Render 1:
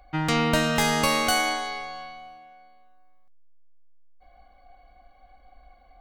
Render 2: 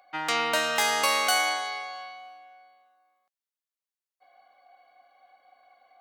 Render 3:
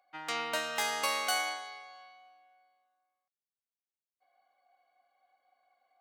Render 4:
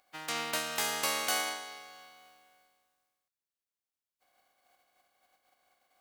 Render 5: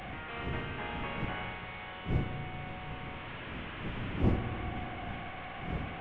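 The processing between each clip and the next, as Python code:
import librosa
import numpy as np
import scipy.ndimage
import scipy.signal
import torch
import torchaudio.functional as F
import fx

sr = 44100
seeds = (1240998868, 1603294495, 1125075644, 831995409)

y1 = scipy.signal.sosfilt(scipy.signal.butter(2, 610.0, 'highpass', fs=sr, output='sos'), x)
y2 = fx.upward_expand(y1, sr, threshold_db=-35.0, expansion=1.5)
y2 = F.gain(torch.from_numpy(y2), -6.5).numpy()
y3 = fx.spec_flatten(y2, sr, power=0.54)
y4 = fx.delta_mod(y3, sr, bps=16000, step_db=-32.0)
y4 = fx.dmg_wind(y4, sr, seeds[0], corner_hz=210.0, level_db=-33.0)
y4 = fx.rev_spring(y4, sr, rt60_s=3.3, pass_ms=(34, 49), chirp_ms=55, drr_db=5.5)
y4 = F.gain(torch.from_numpy(y4), -6.0).numpy()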